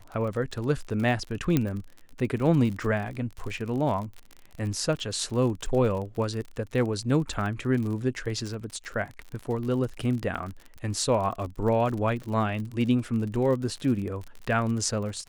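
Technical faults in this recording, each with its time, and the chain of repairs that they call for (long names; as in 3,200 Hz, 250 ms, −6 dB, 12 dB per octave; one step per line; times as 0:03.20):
surface crackle 50 per second −33 dBFS
0:01.57: click −10 dBFS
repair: click removal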